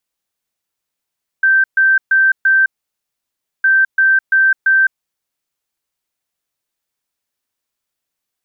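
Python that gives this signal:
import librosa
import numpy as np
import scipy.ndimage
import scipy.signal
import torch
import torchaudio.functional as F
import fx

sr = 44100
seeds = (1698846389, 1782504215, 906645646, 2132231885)

y = fx.beep_pattern(sr, wave='sine', hz=1560.0, on_s=0.21, off_s=0.13, beeps=4, pause_s=0.98, groups=2, level_db=-8.0)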